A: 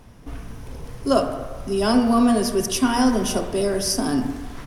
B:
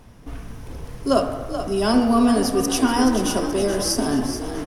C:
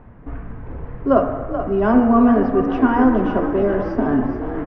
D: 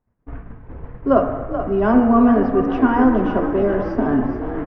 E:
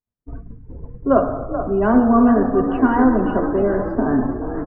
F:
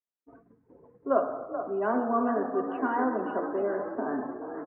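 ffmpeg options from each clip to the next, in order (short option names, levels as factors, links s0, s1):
-filter_complex "[0:a]asplit=8[s0][s1][s2][s3][s4][s5][s6][s7];[s1]adelay=429,afreqshift=36,volume=0.316[s8];[s2]adelay=858,afreqshift=72,volume=0.18[s9];[s3]adelay=1287,afreqshift=108,volume=0.102[s10];[s4]adelay=1716,afreqshift=144,volume=0.0589[s11];[s5]adelay=2145,afreqshift=180,volume=0.0335[s12];[s6]adelay=2574,afreqshift=216,volume=0.0191[s13];[s7]adelay=3003,afreqshift=252,volume=0.0108[s14];[s0][s8][s9][s10][s11][s12][s13][s14]amix=inputs=8:normalize=0"
-af "lowpass=f=1900:w=0.5412,lowpass=f=1900:w=1.3066,volume=1.5"
-af "agate=range=0.0224:threshold=0.0562:ratio=3:detection=peak"
-af "afftdn=nr=20:nf=-37"
-af "highpass=380,lowpass=2500,volume=0.398"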